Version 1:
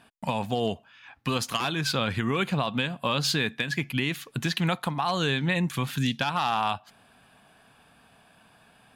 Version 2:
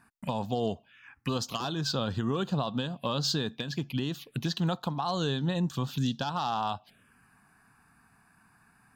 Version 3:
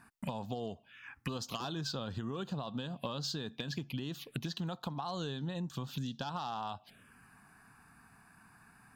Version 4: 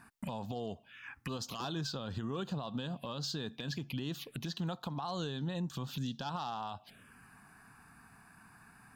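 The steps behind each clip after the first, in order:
phaser swept by the level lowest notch 540 Hz, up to 2,200 Hz, full sweep at −25.5 dBFS; level −2 dB
downward compressor 10 to 1, threshold −37 dBFS, peak gain reduction 13 dB; level +2 dB
brickwall limiter −31 dBFS, peak gain reduction 9 dB; level +2 dB

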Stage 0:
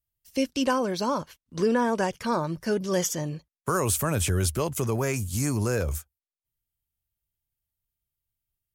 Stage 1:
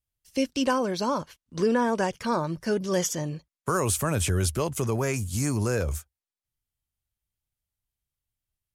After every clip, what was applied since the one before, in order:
low-pass filter 12,000 Hz 12 dB per octave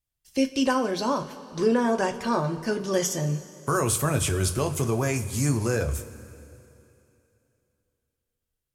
coupled-rooms reverb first 0.21 s, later 2.9 s, from −18 dB, DRR 5 dB

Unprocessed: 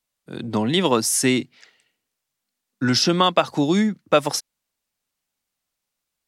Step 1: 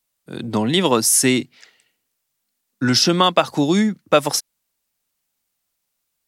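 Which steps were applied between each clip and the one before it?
high-shelf EQ 9,400 Hz +8.5 dB
level +2 dB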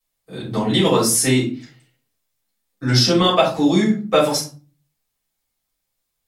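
rectangular room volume 200 cubic metres, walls furnished, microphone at 6 metres
level −11 dB

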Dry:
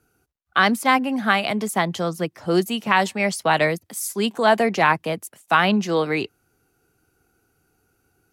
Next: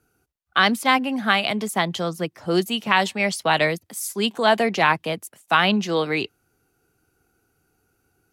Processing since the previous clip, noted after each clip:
dynamic equaliser 3,400 Hz, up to +6 dB, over −38 dBFS, Q 1.4
level −1.5 dB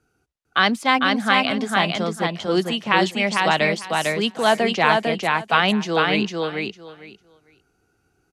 low-pass filter 7,500 Hz 12 dB per octave
on a send: repeating echo 451 ms, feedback 17%, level −3 dB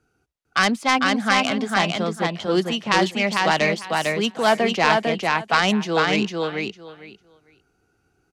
phase distortion by the signal itself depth 0.11 ms
high-shelf EQ 9,400 Hz −6 dB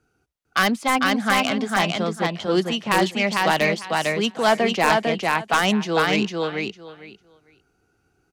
wavefolder on the positive side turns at −9 dBFS

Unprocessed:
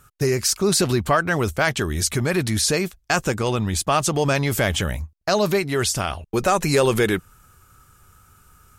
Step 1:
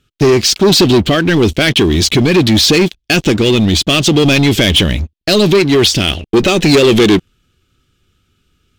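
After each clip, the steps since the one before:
drawn EQ curve 120 Hz 0 dB, 320 Hz +9 dB, 1,000 Hz −14 dB, 3,300 Hz +12 dB, 9,700 Hz −13 dB
leveller curve on the samples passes 3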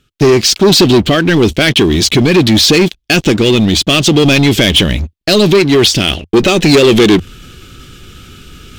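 parametric band 88 Hz −6.5 dB 0.29 octaves
reversed playback
upward compression, threshold −15 dBFS
reversed playback
level +1.5 dB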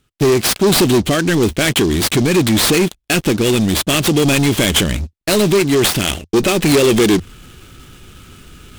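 short delay modulated by noise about 4,600 Hz, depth 0.039 ms
level −5 dB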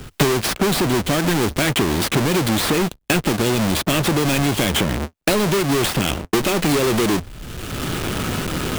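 each half-wave held at its own peak
multiband upward and downward compressor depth 100%
level −8 dB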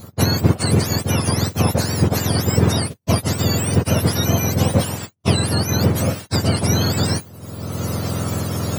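frequency axis turned over on the octave scale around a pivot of 1,300 Hz
level −1 dB

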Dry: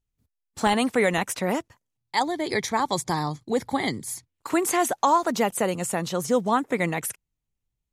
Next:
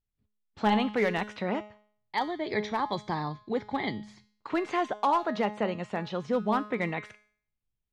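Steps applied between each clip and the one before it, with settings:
low-pass filter 3,900 Hz 24 dB per octave
hard clipping −13.5 dBFS, distortion −25 dB
tuned comb filter 210 Hz, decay 0.53 s, harmonics all, mix 70%
level +4 dB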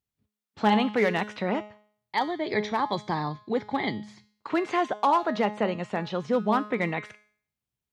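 high-pass filter 89 Hz
level +3 dB

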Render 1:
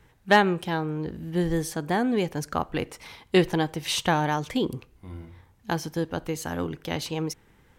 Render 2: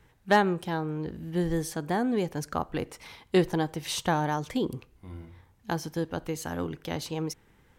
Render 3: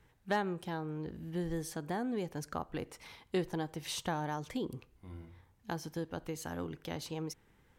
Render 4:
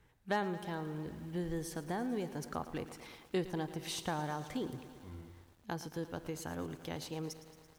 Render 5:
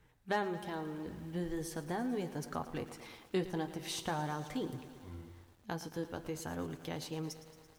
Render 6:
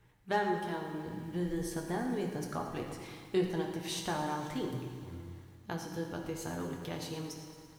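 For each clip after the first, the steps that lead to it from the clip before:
dynamic equaliser 2,600 Hz, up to −6 dB, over −41 dBFS, Q 1.3; level −2.5 dB
downward compressor 1.5 to 1, threshold −32 dBFS, peak gain reduction 6 dB; level −5.5 dB
feedback echo at a low word length 112 ms, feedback 80%, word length 9 bits, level −14 dB; level −1.5 dB
flanger 0.43 Hz, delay 6.3 ms, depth 4.1 ms, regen −55%; level +4.5 dB
convolution reverb RT60 1.6 s, pre-delay 4 ms, DRR 2 dB

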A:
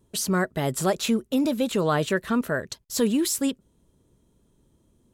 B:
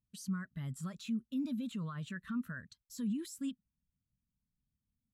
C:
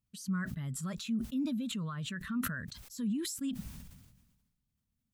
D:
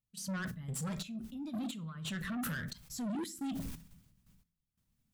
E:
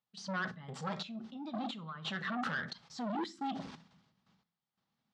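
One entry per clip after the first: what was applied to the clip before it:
flat-topped bell 510 Hz −14 dB; brickwall limiter −25 dBFS, peak gain reduction 11.5 dB; every bin expanded away from the loudest bin 1.5 to 1; level −3.5 dB
level that may fall only so fast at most 45 dB per second; level +2 dB
rectangular room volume 500 cubic metres, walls furnished, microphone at 0.65 metres; gate pattern ".xx.xx...x..xxxx" 88 BPM −12 dB; soft clipping −39 dBFS, distortion −7 dB; level +4.5 dB
loudspeaker in its box 260–4,700 Hz, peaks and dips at 280 Hz −5 dB, 810 Hz +8 dB, 1,200 Hz +4 dB, 2,500 Hz −4 dB; level +4 dB

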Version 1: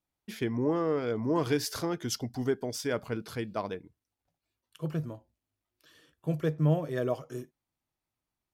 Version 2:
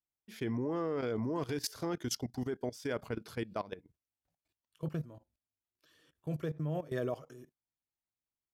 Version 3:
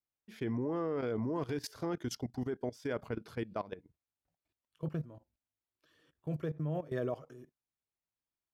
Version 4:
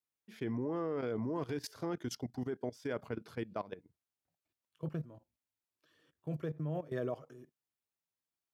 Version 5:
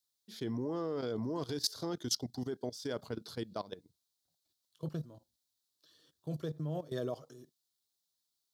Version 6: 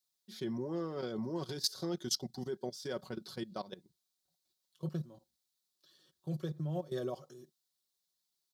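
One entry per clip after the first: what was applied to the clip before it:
output level in coarse steps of 17 dB
high-shelf EQ 3,600 Hz −9 dB
high-pass filter 86 Hz; level −1.5 dB
high shelf with overshoot 3,100 Hz +8.5 dB, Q 3
comb filter 5.4 ms; level −2 dB

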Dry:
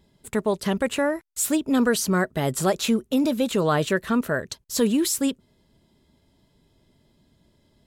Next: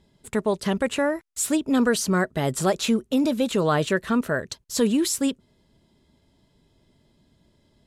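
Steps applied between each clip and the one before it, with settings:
low-pass filter 11,000 Hz 12 dB per octave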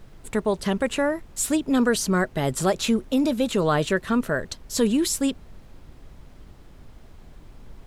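background noise brown −43 dBFS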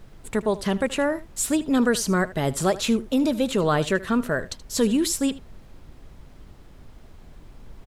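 single-tap delay 78 ms −18 dB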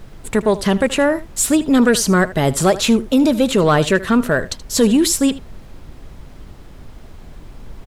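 soft clipping −11.5 dBFS, distortion −23 dB
level +8.5 dB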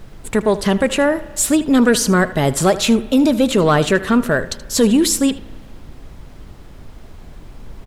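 spring reverb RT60 1.7 s, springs 34 ms, chirp 80 ms, DRR 18 dB

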